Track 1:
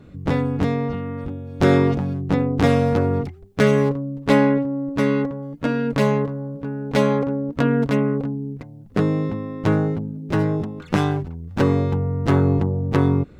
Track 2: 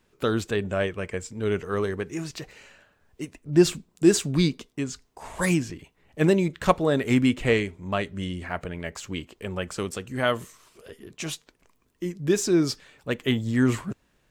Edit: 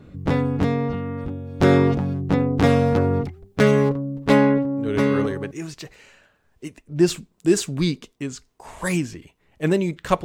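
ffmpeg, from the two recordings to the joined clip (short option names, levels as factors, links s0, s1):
-filter_complex "[0:a]apad=whole_dur=10.24,atrim=end=10.24,atrim=end=5.51,asetpts=PTS-STARTPTS[s0];[1:a]atrim=start=1.34:end=6.81,asetpts=PTS-STARTPTS[s1];[s0][s1]acrossfade=d=0.74:c1=log:c2=log"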